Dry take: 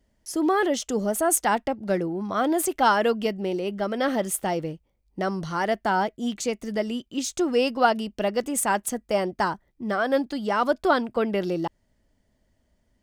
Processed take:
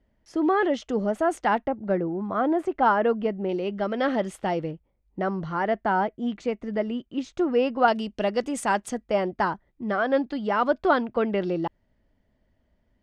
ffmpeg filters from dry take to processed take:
-af "asetnsamples=n=441:p=0,asendcmd='1.65 lowpass f 1600;3.49 lowpass f 3500;4.71 lowpass f 2100;7.88 lowpass f 5400;9.04 lowpass f 3100',lowpass=2.7k"

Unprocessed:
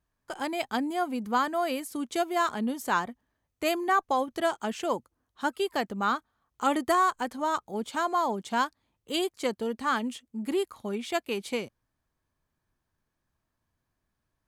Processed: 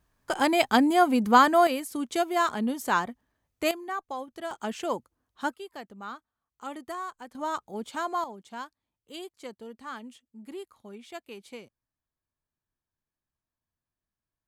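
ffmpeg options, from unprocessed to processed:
-af "asetnsamples=n=441:p=0,asendcmd='1.67 volume volume 1.5dB;3.71 volume volume -9dB;4.51 volume volume -1dB;5.54 volume volume -12.5dB;7.35 volume volume -3dB;8.24 volume volume -12dB',volume=8.5dB"

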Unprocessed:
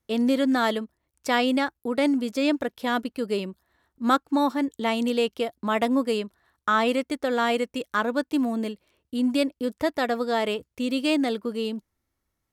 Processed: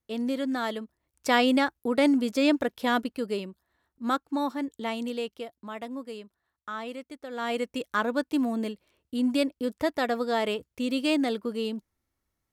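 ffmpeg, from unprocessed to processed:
-af "volume=12.5dB,afade=t=in:st=0.74:d=0.54:silence=0.421697,afade=t=out:st=2.89:d=0.6:silence=0.473151,afade=t=out:st=4.81:d=0.93:silence=0.398107,afade=t=in:st=7.3:d=0.4:silence=0.251189"

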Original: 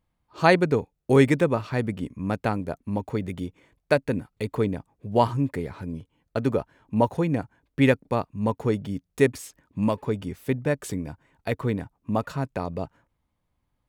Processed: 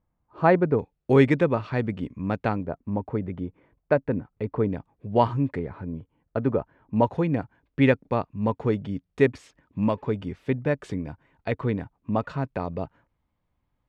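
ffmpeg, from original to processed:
-af "asetnsamples=n=441:p=0,asendcmd='0.79 lowpass f 3600;2.63 lowpass f 1500;4.7 lowpass f 3200;5.59 lowpass f 1700;6.96 lowpass f 3400',lowpass=1.4k"

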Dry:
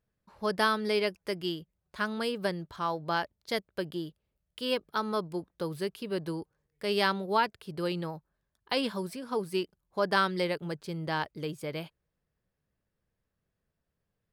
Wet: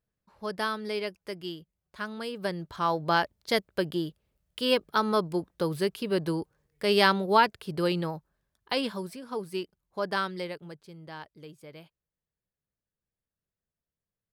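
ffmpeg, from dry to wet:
-af "volume=5.5dB,afade=t=in:st=2.3:d=0.67:silence=0.334965,afade=t=out:st=7.73:d=1.48:silence=0.398107,afade=t=out:st=10.06:d=0.84:silence=0.375837"

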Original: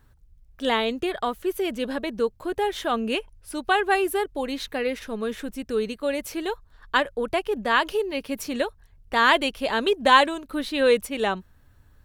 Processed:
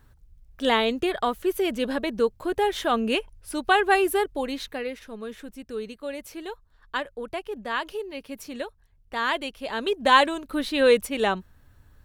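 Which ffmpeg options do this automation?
-af "volume=10dB,afade=t=out:st=4.22:d=0.75:silence=0.354813,afade=t=in:st=9.62:d=0.81:silence=0.375837"

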